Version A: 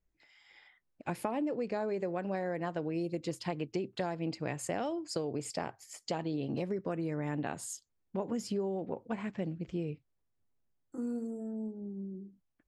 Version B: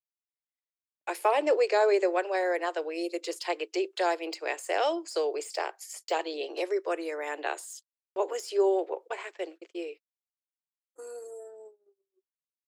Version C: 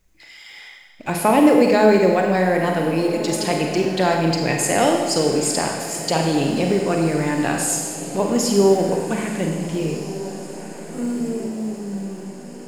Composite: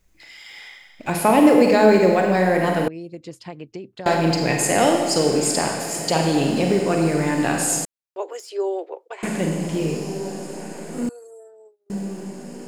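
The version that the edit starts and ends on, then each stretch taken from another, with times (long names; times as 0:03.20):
C
0:02.88–0:04.06: punch in from A
0:07.85–0:09.23: punch in from B
0:11.09–0:11.90: punch in from B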